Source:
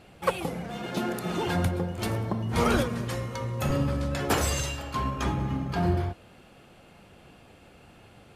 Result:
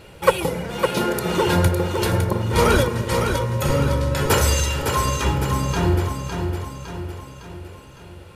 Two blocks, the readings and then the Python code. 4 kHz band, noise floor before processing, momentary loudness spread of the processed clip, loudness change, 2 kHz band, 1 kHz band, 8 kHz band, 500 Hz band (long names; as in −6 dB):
+9.5 dB, −54 dBFS, 15 LU, +8.0 dB, +8.5 dB, +8.5 dB, +9.5 dB, +10.0 dB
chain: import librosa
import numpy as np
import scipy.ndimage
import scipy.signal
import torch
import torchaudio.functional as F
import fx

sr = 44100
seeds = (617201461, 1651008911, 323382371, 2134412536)

y = fx.high_shelf(x, sr, hz=10000.0, db=5.0)
y = fx.notch(y, sr, hz=740.0, q=12.0)
y = y + 0.44 * np.pad(y, (int(2.1 * sr / 1000.0), 0))[:len(y)]
y = fx.rider(y, sr, range_db=10, speed_s=2.0)
y = fx.echo_feedback(y, sr, ms=558, feedback_pct=51, wet_db=-6.0)
y = y * librosa.db_to_amplitude(6.0)